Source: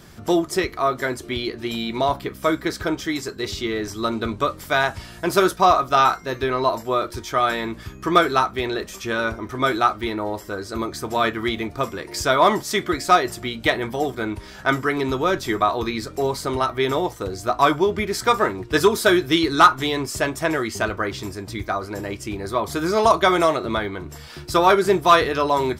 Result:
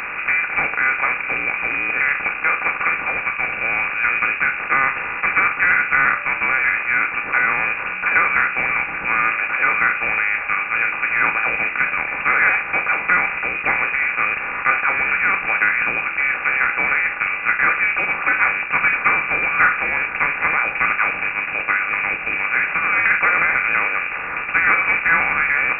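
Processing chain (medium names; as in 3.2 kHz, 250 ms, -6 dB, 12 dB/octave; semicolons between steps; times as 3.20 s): spectral levelling over time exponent 0.4; small resonant body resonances 220/1500 Hz, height 8 dB; frequency inversion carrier 2.7 kHz; trim -7 dB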